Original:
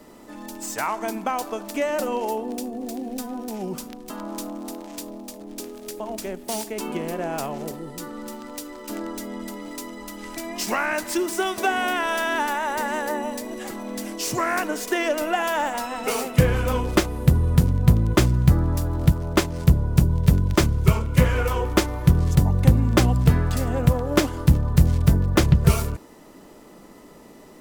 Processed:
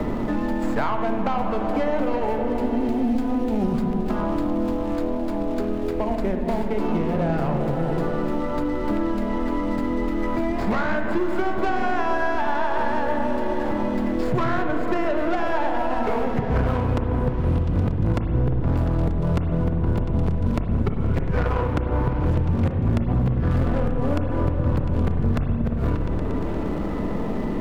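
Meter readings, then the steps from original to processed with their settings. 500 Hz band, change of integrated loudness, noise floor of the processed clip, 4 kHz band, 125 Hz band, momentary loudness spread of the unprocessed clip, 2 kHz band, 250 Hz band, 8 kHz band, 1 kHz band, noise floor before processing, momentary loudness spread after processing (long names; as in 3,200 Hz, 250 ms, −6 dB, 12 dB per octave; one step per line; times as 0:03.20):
+2.0 dB, −1.5 dB, −25 dBFS, −10.0 dB, −2.5 dB, 16 LU, −3.0 dB, +2.5 dB, below −20 dB, +1.0 dB, −47 dBFS, 3 LU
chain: running median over 15 samples
bass and treble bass +4 dB, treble −13 dB
in parallel at −7.5 dB: hard clipping −11.5 dBFS, distortion −9 dB
on the sum: gate with flip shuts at −4 dBFS, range −31 dB
soft clipping −18.5 dBFS, distortion −8 dB
on a send: echo whose low-pass opens from repeat to repeat 117 ms, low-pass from 200 Hz, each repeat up 1 octave, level −3 dB
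on the sum: spring reverb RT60 1 s, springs 30/47/56 ms, chirp 50 ms, DRR 5.5 dB
multiband upward and downward compressor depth 100%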